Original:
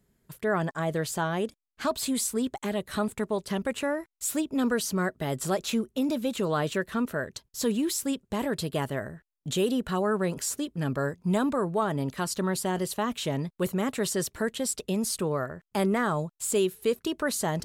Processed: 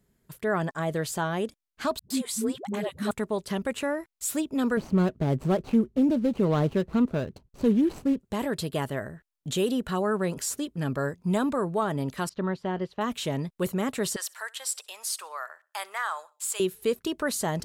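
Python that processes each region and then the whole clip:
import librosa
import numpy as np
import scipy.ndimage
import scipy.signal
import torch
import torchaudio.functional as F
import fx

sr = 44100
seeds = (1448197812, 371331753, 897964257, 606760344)

y = fx.chain(x, sr, fx.highpass(hz=87.0, slope=12),
    fx.high_shelf(hz=4400.0, db=-4.0),
    fx.dispersion(late='highs', ms=112.0, hz=300.0), at=(1.99, 3.11))
y = fx.chain(y, sr, fx.median_filter(points=25),
    fx.low_shelf(hz=330.0, db=9.0),
    fx.resample_linear(factor=2), at=(4.77, 8.2))
y = fx.chain(y, sr, fx.air_absorb(metres=250.0),
    fx.upward_expand(threshold_db=-44.0, expansion=1.5), at=(12.29, 13.01))
y = fx.chain(y, sr, fx.highpass(hz=850.0, slope=24),
    fx.echo_feedback(ms=65, feedback_pct=40, wet_db=-23.5), at=(14.16, 16.6))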